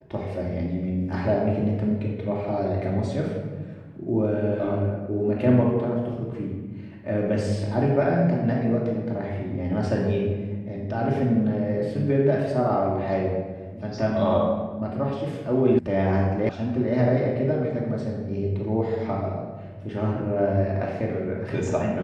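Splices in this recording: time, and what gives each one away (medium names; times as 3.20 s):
15.79 s: sound stops dead
16.49 s: sound stops dead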